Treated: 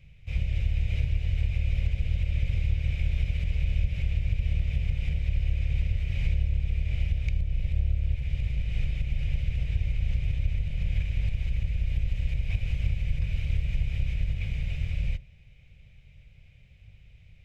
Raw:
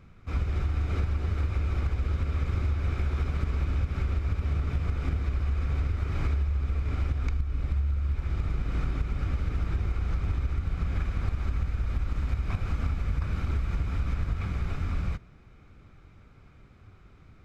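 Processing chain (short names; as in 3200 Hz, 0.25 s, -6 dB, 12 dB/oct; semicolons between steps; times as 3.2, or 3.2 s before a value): octaver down 1 oct, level 0 dB; EQ curve 140 Hz 0 dB, 310 Hz -23 dB, 550 Hz -5 dB, 1300 Hz -24 dB, 1900 Hz -1 dB, 2800 Hz +9 dB, 4200 Hz -1 dB; gain -1 dB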